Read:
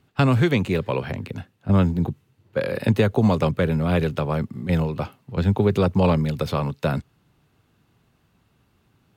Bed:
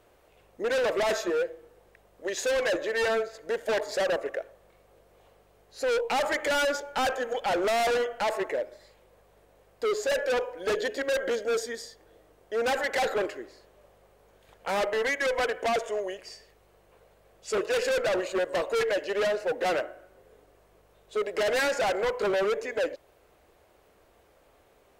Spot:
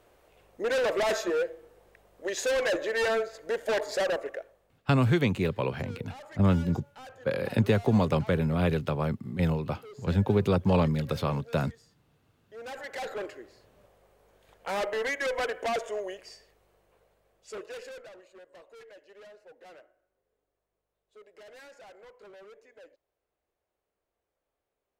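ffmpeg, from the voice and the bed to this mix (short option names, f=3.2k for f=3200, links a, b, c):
-filter_complex "[0:a]adelay=4700,volume=-5dB[a];[1:a]volume=17dB,afade=t=out:st=3.99:d=0.89:silence=0.1,afade=t=in:st=12.44:d=1.43:silence=0.133352,afade=t=out:st=16.12:d=2.03:silence=0.0841395[b];[a][b]amix=inputs=2:normalize=0"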